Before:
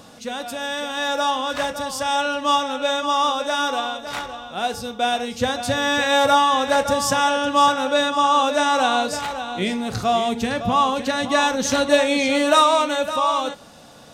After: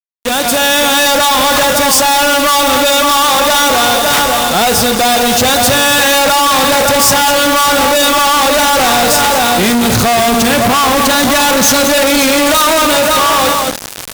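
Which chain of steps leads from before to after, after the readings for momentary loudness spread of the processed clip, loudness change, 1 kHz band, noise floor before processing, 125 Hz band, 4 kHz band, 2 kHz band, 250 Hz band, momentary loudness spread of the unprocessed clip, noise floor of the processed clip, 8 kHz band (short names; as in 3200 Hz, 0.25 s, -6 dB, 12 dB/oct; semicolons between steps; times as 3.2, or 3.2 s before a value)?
2 LU, +11.5 dB, +9.0 dB, -45 dBFS, +13.0 dB, +13.0 dB, +12.0 dB, +10.5 dB, 10 LU, -16 dBFS, +18.5 dB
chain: opening faded in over 0.89 s; in parallel at -2.5 dB: compressor, threshold -27 dBFS, peak gain reduction 15.5 dB; on the sum: outdoor echo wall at 37 m, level -11 dB; fuzz box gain 42 dB, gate -34 dBFS; high shelf 8200 Hz +7.5 dB; reverse; upward compressor, threshold -20 dBFS; reverse; gain +4 dB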